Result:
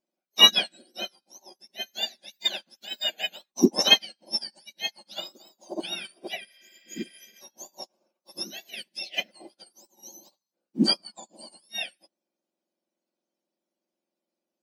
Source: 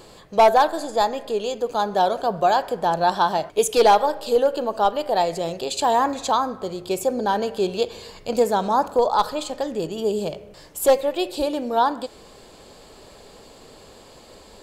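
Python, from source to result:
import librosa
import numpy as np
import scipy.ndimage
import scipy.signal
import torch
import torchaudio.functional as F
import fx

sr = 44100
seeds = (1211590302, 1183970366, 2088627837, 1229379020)

y = fx.octave_mirror(x, sr, pivot_hz=1600.0)
y = fx.spec_repair(y, sr, seeds[0], start_s=6.51, length_s=0.87, low_hz=520.0, high_hz=5800.0, source='before')
y = fx.upward_expand(y, sr, threshold_db=-43.0, expansion=2.5)
y = y * 10.0 ** (4.0 / 20.0)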